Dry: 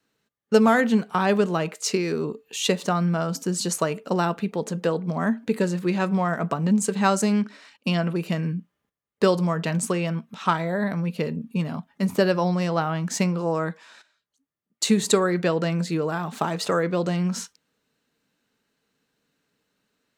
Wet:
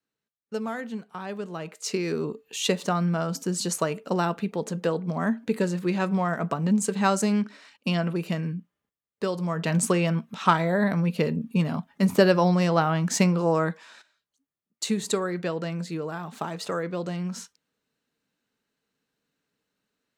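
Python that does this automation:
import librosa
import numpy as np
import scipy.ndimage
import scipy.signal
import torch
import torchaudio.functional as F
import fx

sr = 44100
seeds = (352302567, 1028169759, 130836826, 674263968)

y = fx.gain(x, sr, db=fx.line((1.36, -14.0), (2.08, -2.0), (8.27, -2.0), (9.28, -9.0), (9.78, 2.0), (13.58, 2.0), (14.91, -6.5)))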